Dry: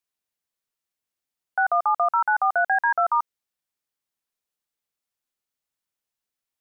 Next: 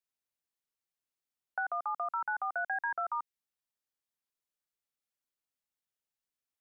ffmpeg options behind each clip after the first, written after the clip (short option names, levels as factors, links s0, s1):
-filter_complex "[0:a]acrossover=split=390|1500[s0][s1][s2];[s0]acompressor=threshold=0.00282:ratio=4[s3];[s1]acompressor=threshold=0.0282:ratio=4[s4];[s2]acompressor=threshold=0.0355:ratio=4[s5];[s3][s4][s5]amix=inputs=3:normalize=0,volume=0.447"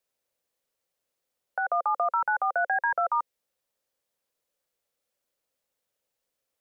-af "equalizer=f=530:w=2.5:g=13,alimiter=level_in=1.12:limit=0.0631:level=0:latency=1:release=213,volume=0.891,volume=2.51"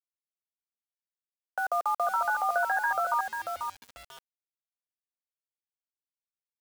-filter_complex "[0:a]asplit=2[s0][s1];[s1]adelay=491,lowpass=f=1700:p=1,volume=0.562,asplit=2[s2][s3];[s3]adelay=491,lowpass=f=1700:p=1,volume=0.19,asplit=2[s4][s5];[s5]adelay=491,lowpass=f=1700:p=1,volume=0.19[s6];[s0][s2][s4][s6]amix=inputs=4:normalize=0,acrusher=bits=6:mix=0:aa=0.000001,volume=0.794"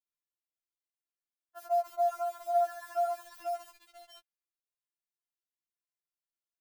-af "afftfilt=real='re*4*eq(mod(b,16),0)':imag='im*4*eq(mod(b,16),0)':win_size=2048:overlap=0.75,volume=0.631"